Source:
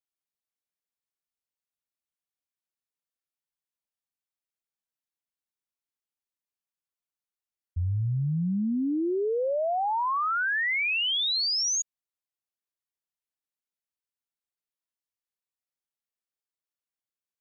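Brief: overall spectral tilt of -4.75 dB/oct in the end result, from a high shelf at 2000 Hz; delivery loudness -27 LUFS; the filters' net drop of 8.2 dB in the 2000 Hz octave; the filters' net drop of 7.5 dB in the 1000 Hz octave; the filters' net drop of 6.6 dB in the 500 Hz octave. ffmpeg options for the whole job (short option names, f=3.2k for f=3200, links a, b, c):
-af "equalizer=f=500:t=o:g=-6.5,equalizer=f=1k:t=o:g=-4.5,highshelf=f=2k:g=-8.5,equalizer=f=2k:t=o:g=-3.5,volume=4.5dB"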